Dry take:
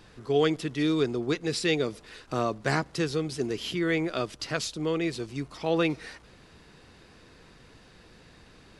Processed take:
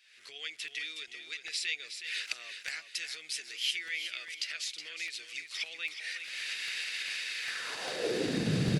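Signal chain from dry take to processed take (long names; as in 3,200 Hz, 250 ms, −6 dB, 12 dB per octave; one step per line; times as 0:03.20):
camcorder AGC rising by 54 dB per second
graphic EQ with 10 bands 125 Hz +8 dB, 500 Hz +3 dB, 1,000 Hz −12 dB
repeating echo 367 ms, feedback 30%, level −8.5 dB
high-pass filter sweep 2,200 Hz → 140 Hz, 0:07.40–0:08.59
0:02.59–0:04.25: high-shelf EQ 9,200 Hz +4.5 dB
regular buffer underruns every 0.40 s, samples 64, repeat, from 0:00.68
level −8.5 dB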